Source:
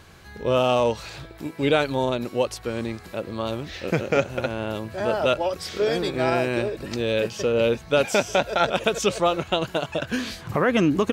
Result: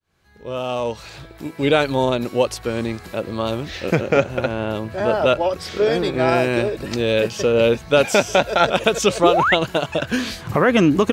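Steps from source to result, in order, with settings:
fade in at the beginning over 2.00 s
0:03.95–0:06.29: high-shelf EQ 4,100 Hz −6.5 dB
0:09.23–0:09.55: sound drawn into the spectrogram rise 290–2,300 Hz −22 dBFS
level +5 dB

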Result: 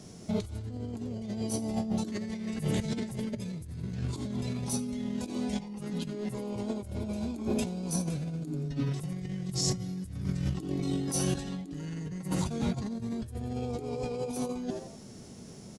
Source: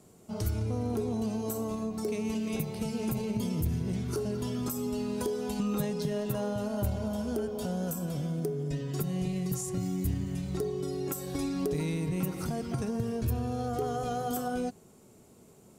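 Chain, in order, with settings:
echo with shifted repeats 88 ms, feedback 37%, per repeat +140 Hz, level −15 dB
compressor whose output falls as the input rises −36 dBFS, ratio −0.5
formants moved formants −5 semitones
level +4 dB

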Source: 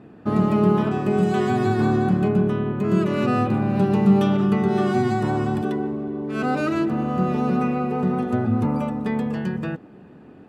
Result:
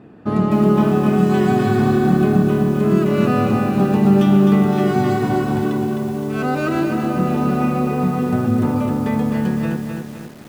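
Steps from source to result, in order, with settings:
feedback echo at a low word length 258 ms, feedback 55%, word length 7 bits, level −4.5 dB
level +2 dB

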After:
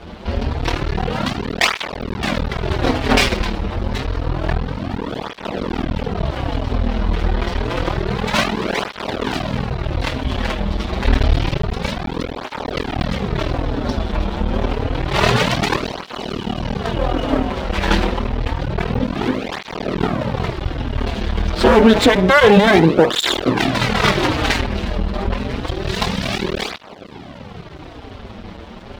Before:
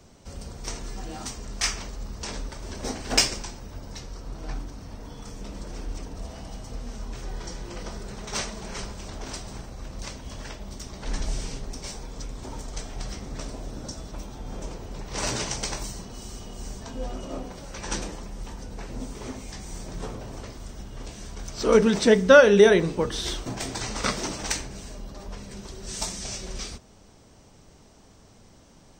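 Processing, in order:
Butterworth low-pass 3,900 Hz 36 dB per octave
mains-hum notches 50/100/150 Hz
in parallel at 0 dB: downward compressor, threshold −38 dBFS, peak gain reduction 26.5 dB
on the sum: half-wave rectification
boost into a limiter +15 dB
through-zero flanger with one copy inverted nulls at 0.28 Hz, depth 7.9 ms
level +5.5 dB

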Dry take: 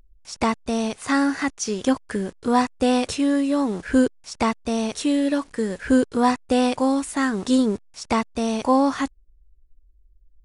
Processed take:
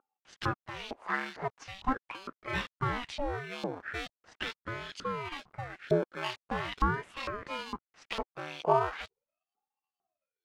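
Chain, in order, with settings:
high-shelf EQ 6,100 Hz −11 dB
in parallel at −5.5 dB: decimation without filtering 23×
on the sum: auto-filter band-pass saw up 2.2 Hz 540–3,900 Hz
ring modulator whose carrier an LFO sweeps 450 Hz, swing 85%, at 0.41 Hz

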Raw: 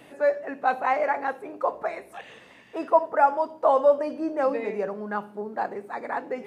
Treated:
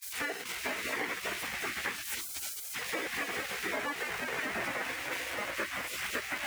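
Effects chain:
converter with a step at zero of −21.5 dBFS
multi-voice chorus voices 4, 0.56 Hz, delay 16 ms, depth 1.2 ms
noise gate with hold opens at −24 dBFS
high-pass filter 99 Hz 12 dB per octave
gate on every frequency bin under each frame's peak −20 dB weak
graphic EQ with 10 bands 125 Hz −3 dB, 250 Hz +4 dB, 500 Hz +9 dB, 2,000 Hz +10 dB, 4,000 Hz −3 dB
downward compressor, threshold −31 dBFS, peak gain reduction 7 dB
multiband upward and downward expander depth 70%

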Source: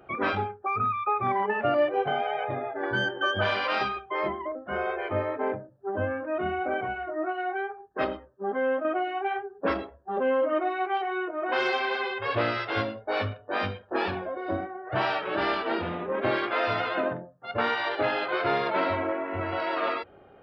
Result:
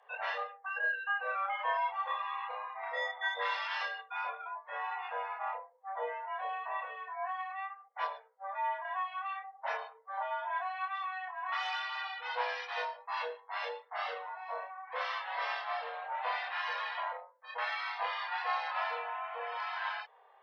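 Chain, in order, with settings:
multi-voice chorus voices 2, 0.25 Hz, delay 28 ms, depth 4.1 ms
frequency shifter +380 Hz
level −6 dB

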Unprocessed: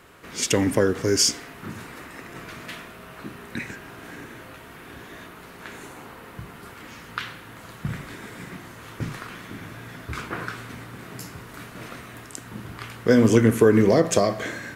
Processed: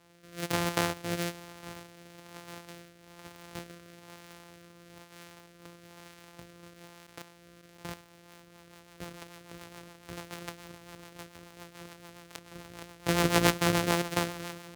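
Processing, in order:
samples sorted by size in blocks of 256 samples
high-pass filter 61 Hz
low-shelf EQ 340 Hz −9 dB
0:06.86–0:08.95: output level in coarse steps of 12 dB
rotating-speaker cabinet horn 1.1 Hz, later 7 Hz, at 0:07.92
amplitude modulation by smooth noise, depth 65%

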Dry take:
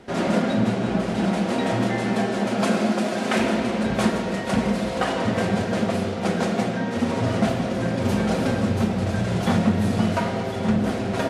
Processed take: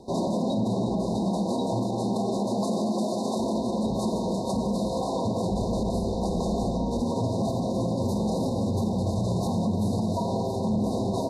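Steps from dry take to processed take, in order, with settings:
0:05.49–0:07.03: sub-octave generator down 2 octaves, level −5 dB
brickwall limiter −18 dBFS, peak gain reduction 9.5 dB
linear-phase brick-wall band-stop 1,100–3,600 Hz

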